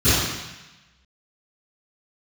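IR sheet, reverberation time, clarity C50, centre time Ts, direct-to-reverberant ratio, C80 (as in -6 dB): 1.0 s, -3.5 dB, 101 ms, -20.0 dB, 0.5 dB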